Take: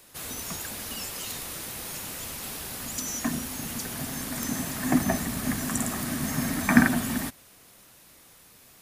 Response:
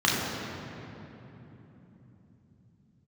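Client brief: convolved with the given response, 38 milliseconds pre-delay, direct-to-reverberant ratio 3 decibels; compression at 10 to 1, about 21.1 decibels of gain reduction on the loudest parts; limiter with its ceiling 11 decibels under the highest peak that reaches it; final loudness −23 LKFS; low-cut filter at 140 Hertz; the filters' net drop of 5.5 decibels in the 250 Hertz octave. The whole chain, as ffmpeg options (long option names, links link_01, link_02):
-filter_complex "[0:a]highpass=140,equalizer=frequency=250:width_type=o:gain=-5.5,acompressor=threshold=-39dB:ratio=10,alimiter=level_in=10dB:limit=-24dB:level=0:latency=1,volume=-10dB,asplit=2[link_01][link_02];[1:a]atrim=start_sample=2205,adelay=38[link_03];[link_02][link_03]afir=irnorm=-1:irlink=0,volume=-19.5dB[link_04];[link_01][link_04]amix=inputs=2:normalize=0,volume=18.5dB"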